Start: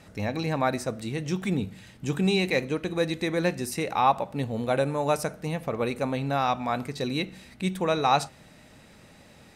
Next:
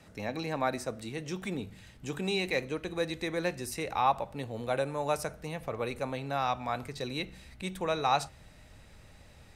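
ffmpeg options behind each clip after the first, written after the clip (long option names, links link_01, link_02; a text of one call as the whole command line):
ffmpeg -i in.wav -filter_complex "[0:a]asubboost=boost=6.5:cutoff=80,acrossover=split=200|1100|2400[link_01][link_02][link_03][link_04];[link_01]asoftclip=type=tanh:threshold=-40dB[link_05];[link_05][link_02][link_03][link_04]amix=inputs=4:normalize=0,volume=-4.5dB" out.wav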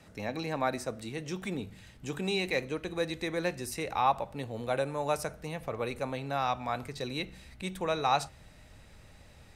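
ffmpeg -i in.wav -af anull out.wav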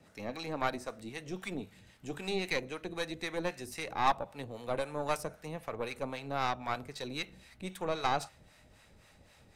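ffmpeg -i in.wav -filter_complex "[0:a]lowshelf=frequency=100:gain=-9,acrossover=split=670[link_01][link_02];[link_01]aeval=exprs='val(0)*(1-0.7/2+0.7/2*cos(2*PI*3.8*n/s))':channel_layout=same[link_03];[link_02]aeval=exprs='val(0)*(1-0.7/2-0.7/2*cos(2*PI*3.8*n/s))':channel_layout=same[link_04];[link_03][link_04]amix=inputs=2:normalize=0,aeval=exprs='0.178*(cos(1*acos(clip(val(0)/0.178,-1,1)))-cos(1*PI/2))+0.0224*(cos(6*acos(clip(val(0)/0.178,-1,1)))-cos(6*PI/2))':channel_layout=same" out.wav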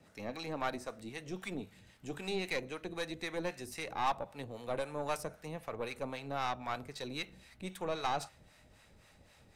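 ffmpeg -i in.wav -af "asoftclip=type=tanh:threshold=-21.5dB,volume=-1.5dB" out.wav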